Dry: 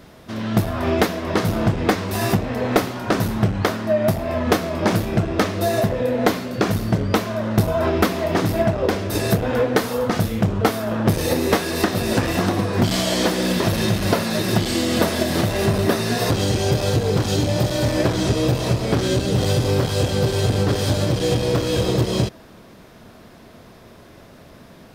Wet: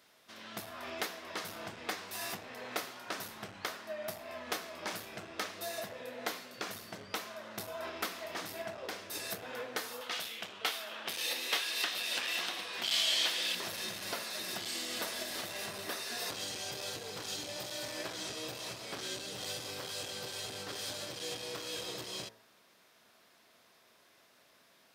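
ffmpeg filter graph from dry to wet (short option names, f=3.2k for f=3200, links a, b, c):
-filter_complex "[0:a]asettb=1/sr,asplit=3[a][b][c];[a]atrim=end=10.014[d];[b]atrim=start=10.01:end=13.55,asetpts=PTS-STARTPTS,afade=t=in:d=0.004:c=qsin,afade=t=out:st=3.536:d=0.004:c=qsin,highpass=f=410:p=1,equalizer=f=3.1k:t=o:w=1.1:g=10.5[e];[c]atrim=start=13.546[f];[d][e]acrossfade=d=0.004:c1=hsin:c2=qsin[g];[g][f]acrossfade=d=0.004:c1=qsin:c2=hsin,lowpass=f=1.9k:p=1,aderivative,bandreject=f=55.83:t=h:w=4,bandreject=f=111.66:t=h:w=4,bandreject=f=167.49:t=h:w=4,bandreject=f=223.32:t=h:w=4,bandreject=f=279.15:t=h:w=4,bandreject=f=334.98:t=h:w=4,bandreject=f=390.81:t=h:w=4,bandreject=f=446.64:t=h:w=4,bandreject=f=502.47:t=h:w=4,bandreject=f=558.3:t=h:w=4,bandreject=f=614.13:t=h:w=4,bandreject=f=669.96:t=h:w=4,bandreject=f=725.79:t=h:w=4,bandreject=f=781.62:t=h:w=4,bandreject=f=837.45:t=h:w=4,bandreject=f=893.28:t=h:w=4,bandreject=f=949.11:t=h:w=4,bandreject=f=1.00494k:t=h:w=4,bandreject=f=1.06077k:t=h:w=4,bandreject=f=1.1166k:t=h:w=4,bandreject=f=1.17243k:t=h:w=4,bandreject=f=1.22826k:t=h:w=4,bandreject=f=1.28409k:t=h:w=4,bandreject=f=1.33992k:t=h:w=4,bandreject=f=1.39575k:t=h:w=4,bandreject=f=1.45158k:t=h:w=4,bandreject=f=1.50741k:t=h:w=4,bandreject=f=1.56324k:t=h:w=4,bandreject=f=1.61907k:t=h:w=4,bandreject=f=1.6749k:t=h:w=4,bandreject=f=1.73073k:t=h:w=4,bandreject=f=1.78656k:t=h:w=4,bandreject=f=1.84239k:t=h:w=4,bandreject=f=1.89822k:t=h:w=4,bandreject=f=1.95405k:t=h:w=4,volume=1dB"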